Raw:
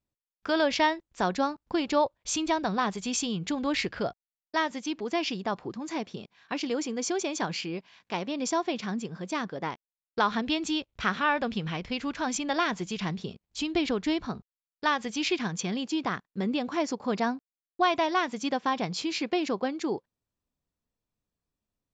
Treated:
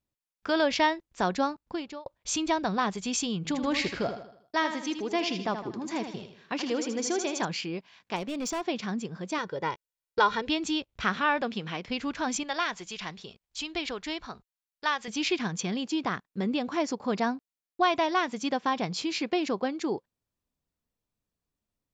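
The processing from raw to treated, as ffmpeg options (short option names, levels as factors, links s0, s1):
-filter_complex "[0:a]asettb=1/sr,asplit=3[s0][s1][s2];[s0]atrim=end=3.374[s3];[s1]atrim=start=3.37:end=7.45,asetpts=PTS-STARTPTS,afade=t=in:d=0.004:c=qsin,afade=t=out:st=4.076:d=0.004:c=qsin,aecho=1:1:79|158|237|316|395:0.376|0.165|0.0728|0.032|0.0141,atrim=end_sample=179928[s4];[s2]atrim=start=7.446[s5];[s3][s4]acrossfade=d=0.004:c1=hsin:c2=qsin[s6];[s6][s5]acrossfade=d=0.004:c1=qsin:c2=hsin,asettb=1/sr,asplit=3[s7][s8][s9];[s7]atrim=end=8.164[s10];[s8]atrim=start=8.16:end=8.63,asetpts=PTS-STARTPTS,afade=t=in:d=0.004:c=qsin,afade=t=out:st=0.466:d=0.004:c=qsin,asoftclip=type=hard:threshold=0.0376[s11];[s9]atrim=start=8.626[s12];[s10][s11]acrossfade=d=0.004:c1=hsin:c2=qsin[s13];[s13][s12]acrossfade=d=0.004:c1=qsin:c2=hsin,asettb=1/sr,asplit=3[s14][s15][s16];[s14]atrim=end=9.384[s17];[s15]atrim=start=9.38:end=10.48,asetpts=PTS-STARTPTS,afade=t=in:d=0.004:c=qsin,afade=t=out:st=1.096:d=0.004:c=qsin,aecho=1:1:2.1:0.69,atrim=end_sample=48510[s18];[s16]atrim=start=10.476[s19];[s17][s18]acrossfade=d=0.004:c1=hsin:c2=qsin[s20];[s20][s19]acrossfade=d=0.004:c1=qsin:c2=hsin,asettb=1/sr,asplit=3[s21][s22][s23];[s21]atrim=end=11.424[s24];[s22]atrim=start=11.42:end=11.88,asetpts=PTS-STARTPTS,afade=t=in:d=0.004:c=qsin,afade=t=out:st=0.456:d=0.004:c=qsin,highpass=210[s25];[s23]atrim=start=11.876[s26];[s24][s25]acrossfade=d=0.004:c1=hsin:c2=qsin[s27];[s27][s26]acrossfade=d=0.004:c1=qsin:c2=hsin,asettb=1/sr,asplit=3[s28][s29][s30];[s28]atrim=end=12.434[s31];[s29]atrim=start=12.43:end=15.08,asetpts=PTS-STARTPTS,afade=t=in:d=0.004:c=qsin,afade=t=out:st=2.646:d=0.004:c=qsin,equalizer=f=170:w=0.41:g=-13[s32];[s30]atrim=start=15.076[s33];[s31][s32]acrossfade=d=0.004:c1=hsin:c2=qsin[s34];[s34][s33]acrossfade=d=0.004:c1=qsin:c2=hsin,asplit=2[s35][s36];[s35]atrim=end=2.06,asetpts=PTS-STARTPTS,afade=t=out:st=1.48:d=0.58[s37];[s36]atrim=start=2.06,asetpts=PTS-STARTPTS,afade=t=in:d=0.004:c=hsin[s38];[s37][s38]concat=n=2:v=0:a=1"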